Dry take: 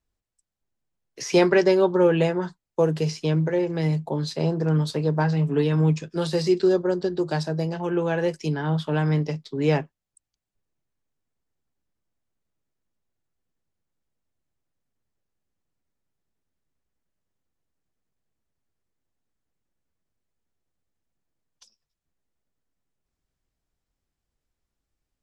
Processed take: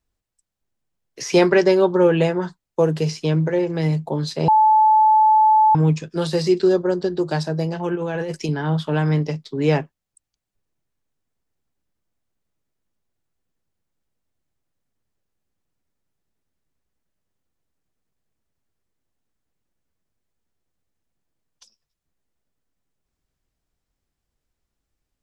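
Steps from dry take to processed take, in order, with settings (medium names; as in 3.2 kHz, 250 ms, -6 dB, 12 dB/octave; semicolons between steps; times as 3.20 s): 4.48–5.75 s: bleep 867 Hz -13.5 dBFS; 7.95–8.49 s: compressor with a negative ratio -28 dBFS, ratio -1; trim +3 dB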